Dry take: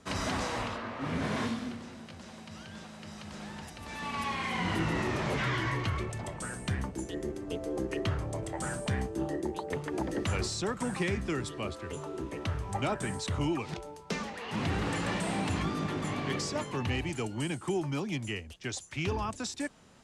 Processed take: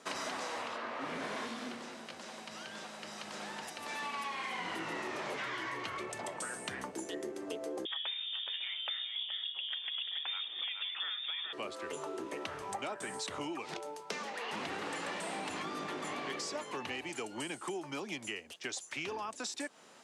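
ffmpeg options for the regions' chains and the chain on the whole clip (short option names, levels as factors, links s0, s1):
-filter_complex "[0:a]asettb=1/sr,asplit=3[s0][s1][s2];[s0]atrim=end=7.854[s3];[s1]atrim=start=7.85:end=11.53,asetpts=PTS-STARTPTS,afade=t=in:d=0.004:c=qsin,afade=t=out:st=3.676:d=0.004:c=qsin,lowpass=f=3100:t=q:w=0.5098,lowpass=f=3100:t=q:w=0.6013,lowpass=f=3100:t=q:w=0.9,lowpass=f=3100:t=q:w=2.563,afreqshift=-3700,aecho=1:1:423:0.376,atrim=end_sample=162288[s4];[s2]atrim=start=11.526[s5];[s3][s4]acrossfade=d=0.004:c1=hsin:c2=qsin[s6];[s6][s5]acrossfade=d=0.004:c1=qsin:c2=hsin,highpass=380,acompressor=threshold=0.01:ratio=6,volume=1.5"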